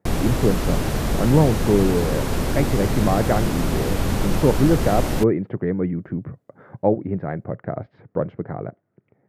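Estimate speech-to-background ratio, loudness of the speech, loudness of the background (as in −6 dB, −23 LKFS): 1.0 dB, −23.0 LKFS, −24.0 LKFS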